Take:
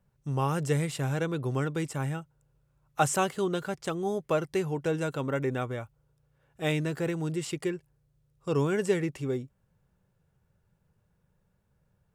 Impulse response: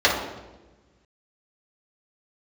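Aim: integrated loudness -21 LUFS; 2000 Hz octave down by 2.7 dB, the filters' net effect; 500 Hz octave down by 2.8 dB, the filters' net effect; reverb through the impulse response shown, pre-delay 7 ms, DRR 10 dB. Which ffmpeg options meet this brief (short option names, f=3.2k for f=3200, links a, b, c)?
-filter_complex "[0:a]equalizer=f=500:t=o:g=-3.5,equalizer=f=2k:t=o:g=-3.5,asplit=2[a][b];[1:a]atrim=start_sample=2205,adelay=7[c];[b][c]afir=irnorm=-1:irlink=0,volume=-31dB[d];[a][d]amix=inputs=2:normalize=0,volume=10.5dB"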